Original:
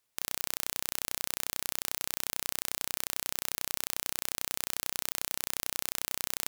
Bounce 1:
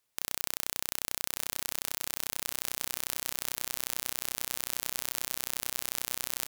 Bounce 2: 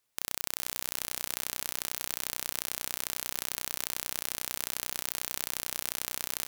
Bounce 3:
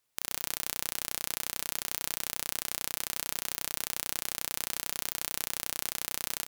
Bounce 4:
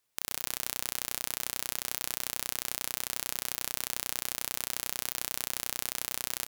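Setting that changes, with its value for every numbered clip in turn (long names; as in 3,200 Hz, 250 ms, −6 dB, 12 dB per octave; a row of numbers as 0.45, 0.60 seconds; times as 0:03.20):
repeating echo, delay time: 1,146, 403, 70, 104 milliseconds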